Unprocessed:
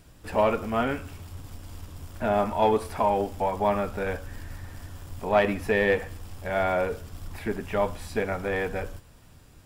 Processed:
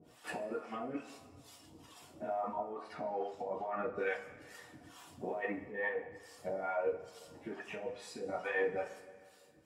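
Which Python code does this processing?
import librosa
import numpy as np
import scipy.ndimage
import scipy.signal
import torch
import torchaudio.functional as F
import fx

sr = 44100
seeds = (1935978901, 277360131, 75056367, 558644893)

y = fx.dereverb_blind(x, sr, rt60_s=1.8)
y = fx.env_lowpass_down(y, sr, base_hz=1300.0, full_db=-21.5)
y = fx.harmonic_tremolo(y, sr, hz=2.3, depth_pct=100, crossover_hz=620.0)
y = fx.over_compress(y, sr, threshold_db=-37.0, ratio=-1.0)
y = fx.dynamic_eq(y, sr, hz=4000.0, q=1.3, threshold_db=-58.0, ratio=4.0, max_db=-7)
y = scipy.signal.sosfilt(scipy.signal.butter(2, 260.0, 'highpass', fs=sr, output='sos'), y)
y = fx.high_shelf(y, sr, hz=8900.0, db=-7.0)
y = fx.notch(y, sr, hz=1600.0, q=14.0)
y = fx.rev_double_slope(y, sr, seeds[0], early_s=0.26, late_s=2.0, knee_db=-19, drr_db=-3.5)
y = y * librosa.db_to_amplitude(-4.0)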